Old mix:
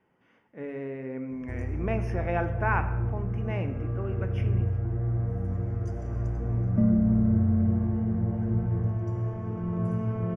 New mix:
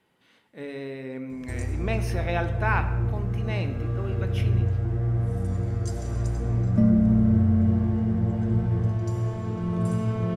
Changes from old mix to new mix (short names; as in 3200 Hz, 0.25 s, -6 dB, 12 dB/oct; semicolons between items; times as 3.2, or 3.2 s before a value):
background +3.0 dB; master: remove running mean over 11 samples